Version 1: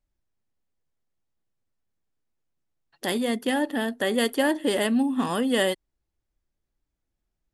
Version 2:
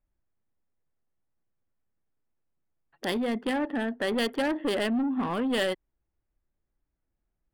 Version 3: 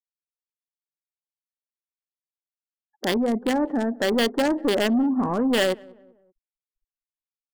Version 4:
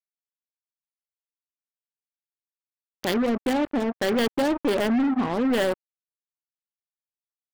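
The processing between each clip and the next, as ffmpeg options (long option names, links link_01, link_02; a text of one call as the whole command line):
ffmpeg -i in.wav -filter_complex "[0:a]lowpass=5800,acrossover=split=2600[link_01][link_02];[link_01]asoftclip=type=tanh:threshold=-23dB[link_03];[link_02]aeval=exprs='0.0841*(cos(1*acos(clip(val(0)/0.0841,-1,1)))-cos(1*PI/2))+0.0119*(cos(7*acos(clip(val(0)/0.0841,-1,1)))-cos(7*PI/2))':channel_layout=same[link_04];[link_03][link_04]amix=inputs=2:normalize=0" out.wav
ffmpeg -i in.wav -filter_complex "[0:a]afftfilt=real='re*gte(hypot(re,im),0.00447)':imag='im*gte(hypot(re,im),0.00447)':win_size=1024:overlap=0.75,acrossover=split=1400[link_01][link_02];[link_02]acrusher=bits=4:mix=0:aa=0.5[link_03];[link_01][link_03]amix=inputs=2:normalize=0,asplit=2[link_04][link_05];[link_05]adelay=192,lowpass=frequency=1000:poles=1,volume=-23dB,asplit=2[link_06][link_07];[link_07]adelay=192,lowpass=frequency=1000:poles=1,volume=0.47,asplit=2[link_08][link_09];[link_09]adelay=192,lowpass=frequency=1000:poles=1,volume=0.47[link_10];[link_04][link_06][link_08][link_10]amix=inputs=4:normalize=0,volume=6dB" out.wav
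ffmpeg -i in.wav -af "acrusher=bits=3:mix=0:aa=0.5,adynamicequalizer=threshold=0.0141:dfrequency=1900:dqfactor=0.7:tfrequency=1900:tqfactor=0.7:attack=5:release=100:ratio=0.375:range=3:mode=cutabove:tftype=highshelf,volume=-2dB" out.wav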